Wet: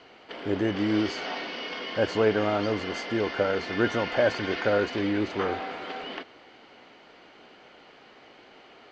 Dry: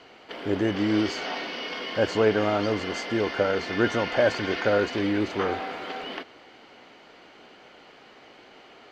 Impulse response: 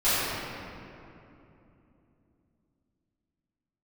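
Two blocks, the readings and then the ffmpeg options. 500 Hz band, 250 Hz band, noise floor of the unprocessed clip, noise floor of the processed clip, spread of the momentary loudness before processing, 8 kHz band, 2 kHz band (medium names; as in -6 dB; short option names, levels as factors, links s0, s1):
-1.5 dB, -1.5 dB, -52 dBFS, -53 dBFS, 12 LU, no reading, -1.5 dB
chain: -af "lowpass=6400,volume=0.841"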